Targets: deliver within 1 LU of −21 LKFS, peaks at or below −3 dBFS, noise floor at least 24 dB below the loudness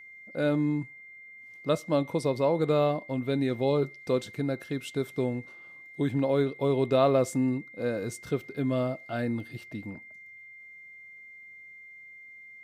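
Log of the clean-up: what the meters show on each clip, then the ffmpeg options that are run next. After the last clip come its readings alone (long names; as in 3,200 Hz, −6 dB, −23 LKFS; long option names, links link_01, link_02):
interfering tone 2,100 Hz; level of the tone −46 dBFS; integrated loudness −29.0 LKFS; sample peak −11.0 dBFS; target loudness −21.0 LKFS
→ -af "bandreject=frequency=2100:width=30"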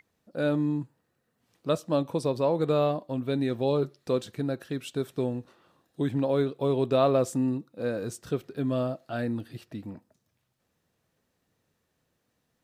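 interfering tone none found; integrated loudness −28.5 LKFS; sample peak −11.0 dBFS; target loudness −21.0 LKFS
→ -af "volume=7.5dB"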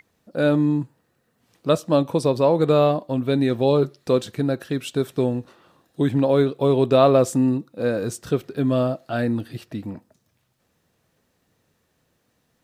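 integrated loudness −21.0 LKFS; sample peak −3.5 dBFS; background noise floor −69 dBFS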